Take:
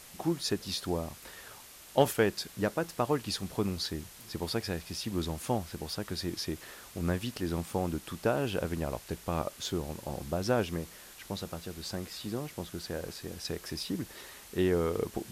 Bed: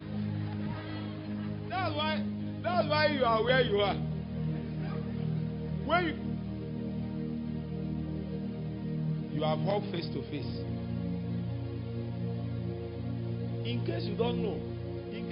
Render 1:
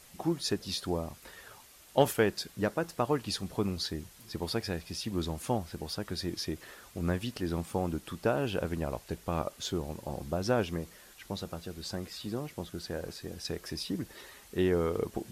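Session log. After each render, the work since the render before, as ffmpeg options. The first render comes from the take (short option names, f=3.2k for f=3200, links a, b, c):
-af "afftdn=nr=6:nf=-52"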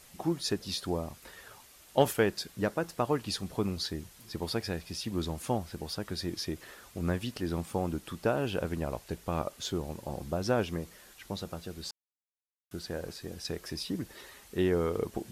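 -filter_complex "[0:a]asplit=3[a][b][c];[a]atrim=end=11.91,asetpts=PTS-STARTPTS,afade=t=out:st=11.906:d=0.004:c=hsin[d];[b]atrim=start=11.91:end=12.71,asetpts=PTS-STARTPTS,volume=0[e];[c]atrim=start=12.71,asetpts=PTS-STARTPTS,afade=t=in:d=0.004:c=hsin[f];[d][e][f]concat=n=3:v=0:a=1"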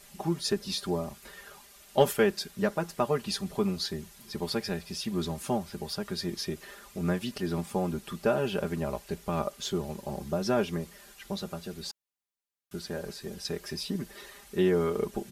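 -af "aecho=1:1:5:0.78"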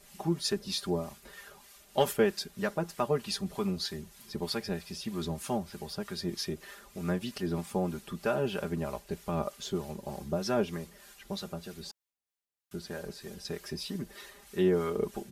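-filter_complex "[0:a]acrossover=split=800[a][b];[a]aeval=exprs='val(0)*(1-0.5/2+0.5/2*cos(2*PI*3.2*n/s))':c=same[c];[b]aeval=exprs='val(0)*(1-0.5/2-0.5/2*cos(2*PI*3.2*n/s))':c=same[d];[c][d]amix=inputs=2:normalize=0"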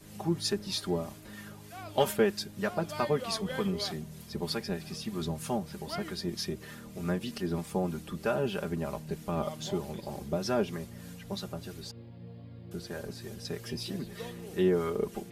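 -filter_complex "[1:a]volume=-12dB[a];[0:a][a]amix=inputs=2:normalize=0"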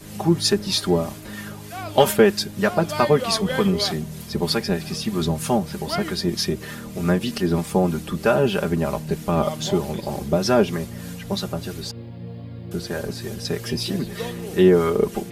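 -af "volume=11.5dB,alimiter=limit=-3dB:level=0:latency=1"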